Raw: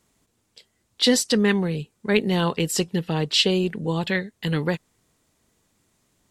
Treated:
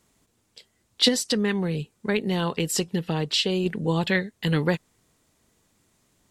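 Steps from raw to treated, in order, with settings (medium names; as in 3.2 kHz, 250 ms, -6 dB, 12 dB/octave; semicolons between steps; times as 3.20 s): 1.08–3.66 s: compression 3:1, threshold -23 dBFS, peak gain reduction 7.5 dB; trim +1 dB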